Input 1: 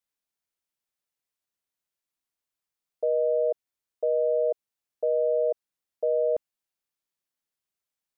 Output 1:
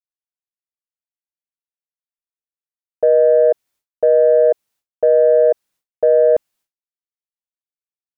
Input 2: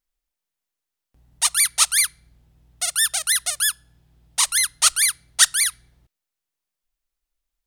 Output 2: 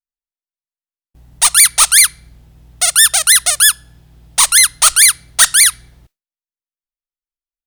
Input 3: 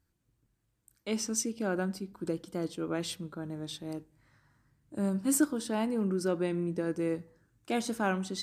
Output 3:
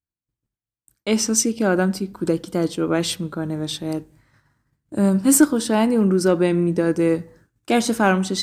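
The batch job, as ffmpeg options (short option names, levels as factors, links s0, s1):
-af "aeval=exprs='0.891*(cos(1*acos(clip(val(0)/0.891,-1,1)))-cos(1*PI/2))+0.02*(cos(4*acos(clip(val(0)/0.891,-1,1)))-cos(4*PI/2))+0.398*(cos(5*acos(clip(val(0)/0.891,-1,1)))-cos(5*PI/2))':c=same,aeval=exprs='1.58*sin(PI/2*1.58*val(0)/1.58)':c=same,agate=range=0.0224:threshold=0.01:ratio=3:detection=peak,volume=0.562"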